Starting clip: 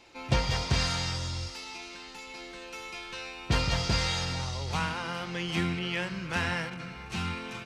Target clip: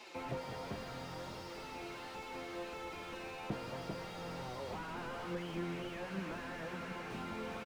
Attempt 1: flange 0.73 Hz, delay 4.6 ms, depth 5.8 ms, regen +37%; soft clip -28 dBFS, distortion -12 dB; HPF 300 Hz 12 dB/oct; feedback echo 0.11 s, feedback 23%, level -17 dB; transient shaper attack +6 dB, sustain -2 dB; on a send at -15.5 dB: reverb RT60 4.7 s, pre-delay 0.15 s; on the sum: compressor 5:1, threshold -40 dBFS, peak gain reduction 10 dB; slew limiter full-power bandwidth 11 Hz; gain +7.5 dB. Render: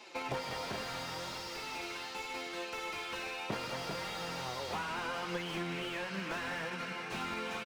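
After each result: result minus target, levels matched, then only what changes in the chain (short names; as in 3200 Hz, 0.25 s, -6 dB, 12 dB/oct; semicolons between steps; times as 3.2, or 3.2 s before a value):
soft clip: distortion +10 dB; slew limiter: distortion -8 dB
change: soft clip -19.5 dBFS, distortion -23 dB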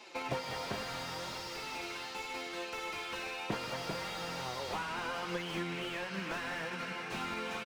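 slew limiter: distortion -8 dB
change: slew limiter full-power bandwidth 3.5 Hz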